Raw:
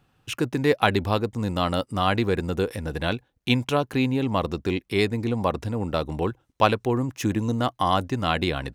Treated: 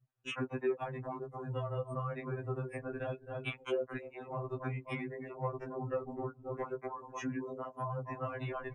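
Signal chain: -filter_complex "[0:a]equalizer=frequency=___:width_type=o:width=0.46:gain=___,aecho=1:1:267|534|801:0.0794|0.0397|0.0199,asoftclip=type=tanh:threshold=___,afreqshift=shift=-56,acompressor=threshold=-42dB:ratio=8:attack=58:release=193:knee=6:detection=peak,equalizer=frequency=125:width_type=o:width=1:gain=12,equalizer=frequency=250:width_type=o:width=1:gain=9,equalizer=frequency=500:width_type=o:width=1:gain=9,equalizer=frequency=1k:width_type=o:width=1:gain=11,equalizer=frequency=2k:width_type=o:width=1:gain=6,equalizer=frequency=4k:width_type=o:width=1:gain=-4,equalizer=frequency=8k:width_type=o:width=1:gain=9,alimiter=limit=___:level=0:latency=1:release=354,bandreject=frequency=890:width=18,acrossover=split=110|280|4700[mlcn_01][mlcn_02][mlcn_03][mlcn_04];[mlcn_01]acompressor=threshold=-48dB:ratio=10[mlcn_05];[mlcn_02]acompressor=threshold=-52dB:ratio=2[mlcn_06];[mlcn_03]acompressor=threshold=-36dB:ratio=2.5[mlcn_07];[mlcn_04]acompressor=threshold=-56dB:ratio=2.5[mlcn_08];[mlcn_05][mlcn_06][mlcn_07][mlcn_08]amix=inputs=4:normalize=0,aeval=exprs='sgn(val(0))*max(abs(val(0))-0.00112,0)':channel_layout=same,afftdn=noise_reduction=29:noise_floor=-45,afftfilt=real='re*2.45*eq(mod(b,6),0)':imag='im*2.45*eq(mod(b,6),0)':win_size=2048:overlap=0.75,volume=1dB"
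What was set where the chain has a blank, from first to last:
270, -13.5, -20.5dB, -13dB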